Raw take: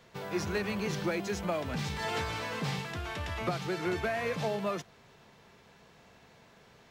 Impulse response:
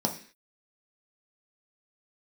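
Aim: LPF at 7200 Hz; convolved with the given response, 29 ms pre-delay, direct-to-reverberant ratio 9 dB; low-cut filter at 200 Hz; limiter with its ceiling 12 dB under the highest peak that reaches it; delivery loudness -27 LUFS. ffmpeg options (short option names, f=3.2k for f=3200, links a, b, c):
-filter_complex "[0:a]highpass=200,lowpass=7.2k,alimiter=level_in=9dB:limit=-24dB:level=0:latency=1,volume=-9dB,asplit=2[a][b];[1:a]atrim=start_sample=2205,adelay=29[c];[b][c]afir=irnorm=-1:irlink=0,volume=-17dB[d];[a][d]amix=inputs=2:normalize=0,volume=13dB"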